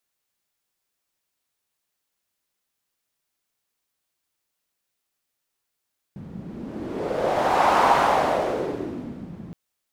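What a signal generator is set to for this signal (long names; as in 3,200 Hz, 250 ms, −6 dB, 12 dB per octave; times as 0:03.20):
wind from filtered noise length 3.37 s, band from 180 Hz, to 890 Hz, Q 2.7, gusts 1, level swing 20 dB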